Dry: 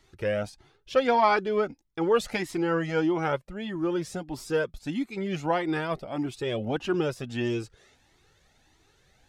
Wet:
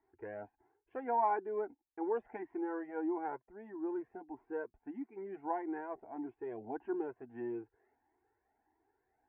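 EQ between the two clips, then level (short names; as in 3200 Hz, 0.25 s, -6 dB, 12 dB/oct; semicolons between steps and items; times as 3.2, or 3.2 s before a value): HPF 440 Hz 6 dB/oct; LPF 1300 Hz 24 dB/oct; fixed phaser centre 830 Hz, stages 8; -5.5 dB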